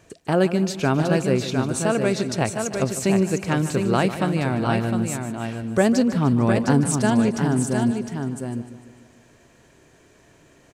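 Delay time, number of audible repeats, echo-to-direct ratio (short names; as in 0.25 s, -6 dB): 0.15 s, 8, -4.5 dB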